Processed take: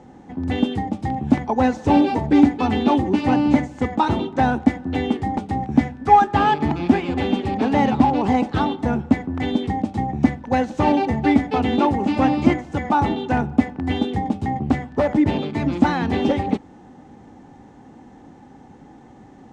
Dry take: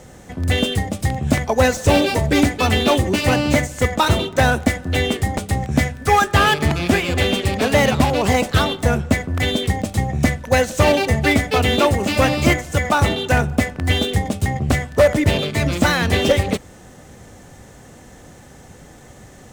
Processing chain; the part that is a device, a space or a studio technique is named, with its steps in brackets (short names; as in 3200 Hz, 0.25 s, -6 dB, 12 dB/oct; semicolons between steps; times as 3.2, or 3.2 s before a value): inside a cardboard box (LPF 4600 Hz 12 dB/oct; small resonant body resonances 270/820 Hz, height 16 dB, ringing for 20 ms); gain -11.5 dB